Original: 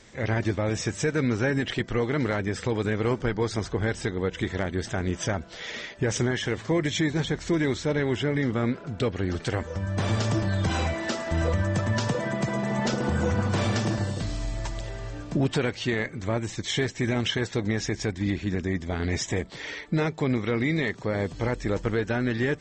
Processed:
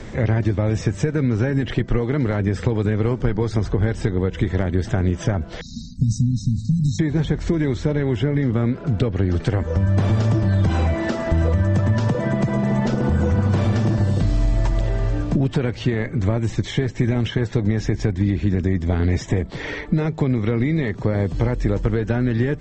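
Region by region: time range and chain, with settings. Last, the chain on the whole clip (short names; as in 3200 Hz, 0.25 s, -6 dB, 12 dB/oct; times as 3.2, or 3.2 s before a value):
5.61–6.99 brick-wall FIR band-stop 270–3700 Hz + high shelf 6000 Hz +5 dB
whole clip: compressor, threshold -27 dBFS; tilt -2.5 dB/oct; three-band squash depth 40%; gain +5.5 dB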